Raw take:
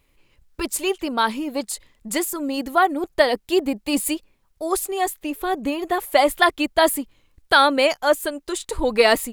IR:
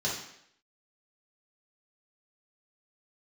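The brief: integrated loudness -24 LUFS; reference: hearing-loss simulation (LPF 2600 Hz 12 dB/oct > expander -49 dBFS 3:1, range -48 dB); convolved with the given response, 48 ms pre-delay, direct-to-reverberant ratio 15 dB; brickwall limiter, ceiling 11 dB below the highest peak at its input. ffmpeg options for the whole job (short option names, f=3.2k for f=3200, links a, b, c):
-filter_complex "[0:a]alimiter=limit=-12.5dB:level=0:latency=1,asplit=2[a][b];[1:a]atrim=start_sample=2205,adelay=48[c];[b][c]afir=irnorm=-1:irlink=0,volume=-22.5dB[d];[a][d]amix=inputs=2:normalize=0,lowpass=2.6k,agate=range=-48dB:threshold=-49dB:ratio=3,volume=1.5dB"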